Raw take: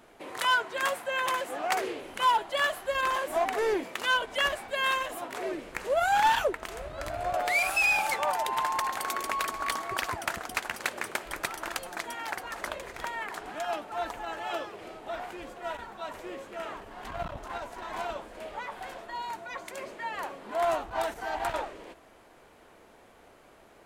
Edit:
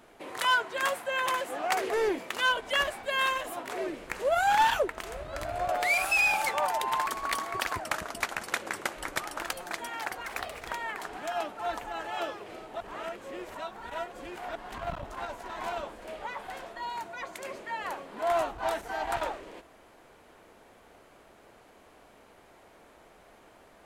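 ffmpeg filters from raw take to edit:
-filter_complex "[0:a]asplit=9[a][b][c][d][e][f][g][h][i];[a]atrim=end=1.902[j];[b]atrim=start=3.548:end=8.712[k];[c]atrim=start=9.428:end=10.174[l];[d]atrim=start=10.17:end=11.65,asetpts=PTS-STARTPTS,asetrate=41013,aresample=44100[m];[e]atrim=start=11.646:end=12.524[n];[f]atrim=start=12.52:end=12.94,asetpts=PTS-STARTPTS,asetrate=52479,aresample=44100[o];[g]atrim=start=12.936:end=15.132[p];[h]atrim=start=15.128:end=16.882,asetpts=PTS-STARTPTS,areverse[q];[i]atrim=start=16.878[r];[j][k]acrossfade=d=0.004:c1=hsin:c2=hsin[s];[s][l]acrossfade=d=0.004:c1=hsin:c2=hsin[t];[t][m]acrossfade=d=0.004:c1=hsin:c2=hsin[u];[u][n]acrossfade=d=0.004:c1=hsin:c2=hsin[v];[v][o]acrossfade=d=0.004:c1=hsin:c2=hsin[w];[w][p]acrossfade=d=0.004:c1=hsin:c2=hsin[x];[x][q]acrossfade=d=0.004:c1=hsin:c2=hsin[y];[y][r]acrossfade=d=0.004:c1=hsin:c2=hsin"

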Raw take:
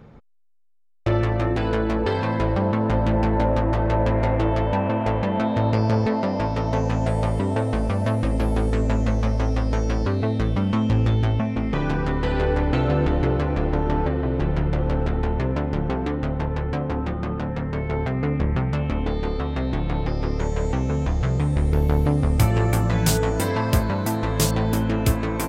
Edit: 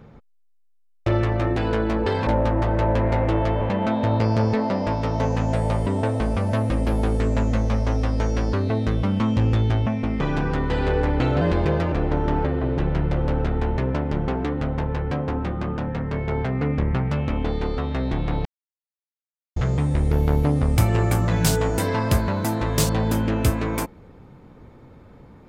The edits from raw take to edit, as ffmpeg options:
-filter_complex "[0:a]asplit=7[a][b][c][d][e][f][g];[a]atrim=end=2.272[h];[b]atrim=start=3.378:end=4.722[i];[c]atrim=start=5.138:end=12.944[j];[d]atrim=start=12.94:end=13.54,asetpts=PTS-STARTPTS,asetrate=51597,aresample=44100,atrim=end_sample=22615,asetpts=PTS-STARTPTS[k];[e]atrim=start=13.536:end=20.07,asetpts=PTS-STARTPTS,afade=t=out:st=6.53:d=0.004:c=hsin[l];[f]atrim=start=20.07:end=21.18,asetpts=PTS-STARTPTS,volume=0[m];[g]atrim=start=21.18,asetpts=PTS-STARTPTS,afade=t=in:d=0.004:c=hsin[n];[h][i]acrossfade=d=0.004:c1=hsin:c2=hsin[o];[o][j]acrossfade=d=0.004:c1=hsin:c2=hsin[p];[p][k]acrossfade=d=0.004:c1=hsin:c2=hsin[q];[l][m][n]concat=n=3:v=0:a=1[r];[q][r]acrossfade=d=0.004:c1=hsin:c2=hsin"

